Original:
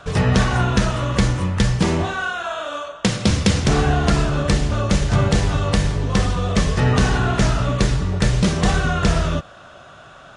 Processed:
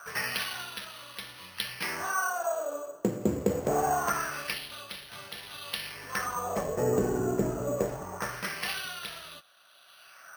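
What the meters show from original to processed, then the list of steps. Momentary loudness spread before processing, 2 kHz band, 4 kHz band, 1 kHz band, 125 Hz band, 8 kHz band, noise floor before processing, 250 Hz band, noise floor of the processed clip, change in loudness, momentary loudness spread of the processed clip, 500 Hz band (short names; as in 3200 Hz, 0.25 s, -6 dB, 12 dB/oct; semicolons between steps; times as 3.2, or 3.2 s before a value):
5 LU, -9.5 dB, -10.5 dB, -8.5 dB, -22.5 dB, -9.5 dB, -43 dBFS, -14.5 dB, -56 dBFS, -12.5 dB, 13 LU, -7.5 dB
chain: LFO band-pass sine 0.24 Hz 360–5100 Hz; careless resampling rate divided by 6×, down filtered, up hold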